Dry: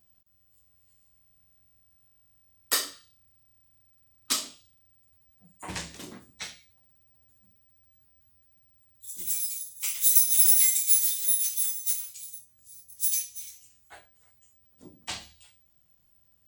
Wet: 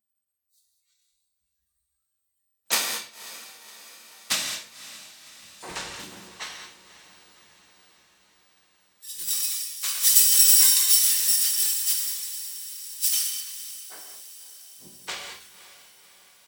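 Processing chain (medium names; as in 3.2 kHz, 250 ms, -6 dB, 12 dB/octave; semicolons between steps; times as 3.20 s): high-pass 490 Hz 6 dB/octave; harmony voices -12 st -2 dB, -5 st -5 dB; spectral noise reduction 21 dB; on a send: echo that smears into a reverb 549 ms, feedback 62%, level -15 dB; on the sum: gated-style reverb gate 240 ms flat, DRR 2.5 dB; trim -1 dB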